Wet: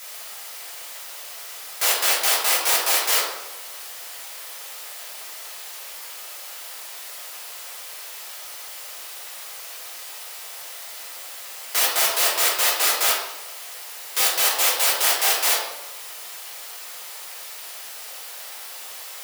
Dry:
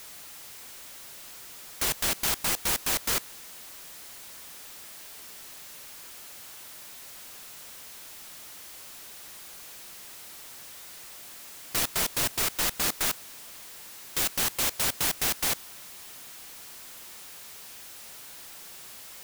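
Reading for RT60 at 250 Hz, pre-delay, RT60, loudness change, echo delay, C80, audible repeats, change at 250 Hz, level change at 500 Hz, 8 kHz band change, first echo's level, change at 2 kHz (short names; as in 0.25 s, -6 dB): 1.1 s, 3 ms, 0.95 s, +7.5 dB, none, 6.0 dB, none, -5.5 dB, +8.5 dB, +7.5 dB, none, +9.0 dB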